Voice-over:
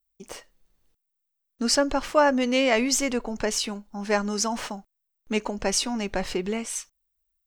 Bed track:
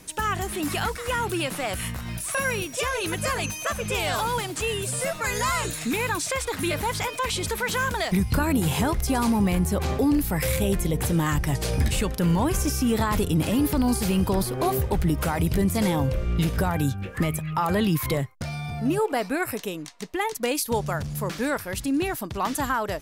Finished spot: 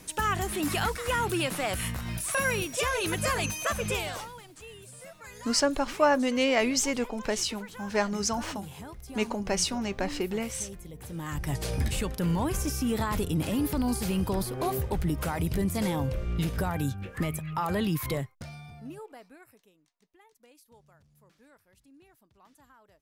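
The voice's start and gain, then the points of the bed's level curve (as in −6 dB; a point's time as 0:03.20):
3.85 s, −3.0 dB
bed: 0:03.90 −1.5 dB
0:04.34 −19.5 dB
0:10.98 −19.5 dB
0:11.51 −5.5 dB
0:18.18 −5.5 dB
0:19.74 −33 dB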